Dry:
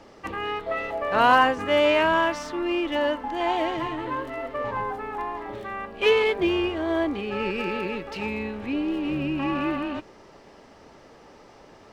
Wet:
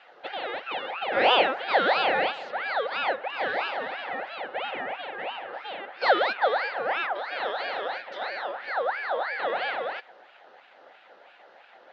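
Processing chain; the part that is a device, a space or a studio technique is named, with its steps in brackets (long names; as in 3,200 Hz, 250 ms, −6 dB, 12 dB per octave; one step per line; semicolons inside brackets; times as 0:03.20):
voice changer toy (ring modulator whose carrier an LFO sweeps 1,400 Hz, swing 45%, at 3 Hz; loudspeaker in its box 440–4,000 Hz, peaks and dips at 540 Hz +8 dB, 770 Hz +9 dB, 1,100 Hz −7 dB, 2,300 Hz −6 dB)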